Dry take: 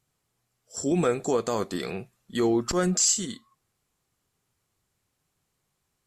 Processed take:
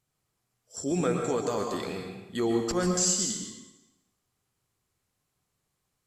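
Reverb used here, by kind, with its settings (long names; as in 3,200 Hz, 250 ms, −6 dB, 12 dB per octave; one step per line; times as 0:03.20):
dense smooth reverb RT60 0.95 s, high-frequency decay 0.95×, pre-delay 105 ms, DRR 3 dB
level −4 dB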